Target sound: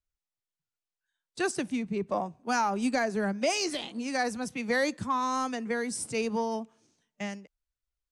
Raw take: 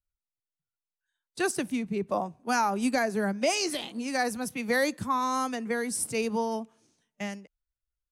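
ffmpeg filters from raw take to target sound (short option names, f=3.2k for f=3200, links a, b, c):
-af "lowpass=f=8.8k:w=0.5412,lowpass=f=8.8k:w=1.3066,aeval=exprs='0.158*(cos(1*acos(clip(val(0)/0.158,-1,1)))-cos(1*PI/2))+0.00355*(cos(5*acos(clip(val(0)/0.158,-1,1)))-cos(5*PI/2))':c=same,volume=-1.5dB"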